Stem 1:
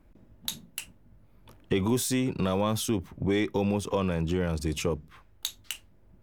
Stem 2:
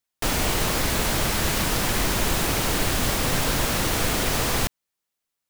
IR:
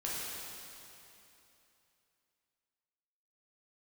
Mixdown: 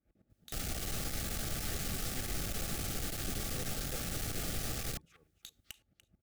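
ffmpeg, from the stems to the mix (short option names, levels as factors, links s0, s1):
-filter_complex "[0:a]highpass=49,acompressor=threshold=0.0224:ratio=4,aeval=exprs='val(0)*pow(10,-20*if(lt(mod(-9.1*n/s,1),2*abs(-9.1)/1000),1-mod(-9.1*n/s,1)/(2*abs(-9.1)/1000),(mod(-9.1*n/s,1)-2*abs(-9.1)/1000)/(1-2*abs(-9.1)/1000))/20)':c=same,volume=0.596,asplit=2[s0][s1];[s1]volume=0.106[s2];[1:a]acrossover=split=200|4300[s3][s4][s5];[s3]acompressor=threshold=0.0224:ratio=4[s6];[s4]acompressor=threshold=0.00794:ratio=4[s7];[s5]acompressor=threshold=0.0141:ratio=4[s8];[s6][s7][s8]amix=inputs=3:normalize=0,adelay=300,volume=0.944[s9];[s2]aecho=0:1:292|584|876|1168:1|0.27|0.0729|0.0197[s10];[s0][s9][s10]amix=inputs=3:normalize=0,aeval=exprs='(tanh(39.8*val(0)+0.45)-tanh(0.45))/39.8':c=same,asuperstop=centerf=980:order=20:qfactor=4.4"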